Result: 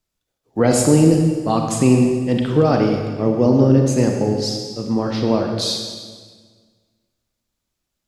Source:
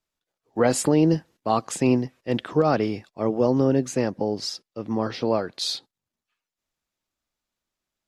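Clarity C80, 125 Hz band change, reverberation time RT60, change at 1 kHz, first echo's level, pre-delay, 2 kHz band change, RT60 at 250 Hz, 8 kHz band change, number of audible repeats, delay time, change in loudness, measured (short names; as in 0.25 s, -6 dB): 5.0 dB, +10.5 dB, 1.6 s, +3.0 dB, none, 33 ms, +3.5 dB, 1.9 s, +7.0 dB, none, none, +6.5 dB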